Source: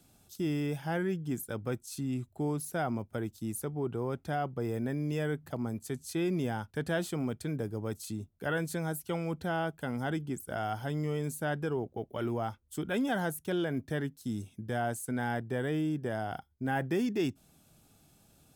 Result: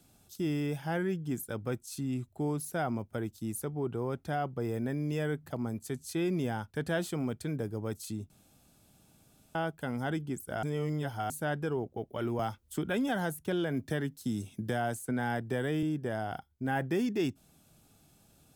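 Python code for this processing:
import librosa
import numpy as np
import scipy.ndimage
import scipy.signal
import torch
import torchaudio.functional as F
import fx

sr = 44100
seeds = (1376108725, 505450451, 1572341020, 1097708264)

y = fx.band_squash(x, sr, depth_pct=70, at=(12.39, 15.83))
y = fx.edit(y, sr, fx.room_tone_fill(start_s=8.3, length_s=1.25),
    fx.reverse_span(start_s=10.63, length_s=0.67), tone=tone)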